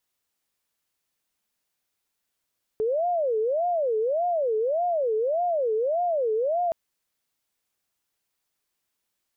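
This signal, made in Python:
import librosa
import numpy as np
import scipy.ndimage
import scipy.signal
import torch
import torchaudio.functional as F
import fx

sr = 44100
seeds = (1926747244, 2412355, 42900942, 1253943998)

y = fx.siren(sr, length_s=3.92, kind='wail', low_hz=431.0, high_hz=712.0, per_s=1.7, wave='sine', level_db=-21.5)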